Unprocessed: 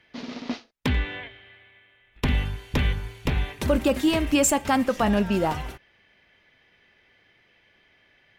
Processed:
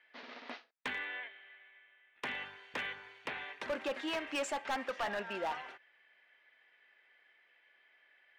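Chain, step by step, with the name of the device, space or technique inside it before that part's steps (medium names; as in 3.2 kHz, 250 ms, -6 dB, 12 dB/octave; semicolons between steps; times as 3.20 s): megaphone (band-pass 600–3300 Hz; peaking EQ 1.7 kHz +4.5 dB 0.58 oct; hard clipper -23.5 dBFS, distortion -9 dB); trim -7.5 dB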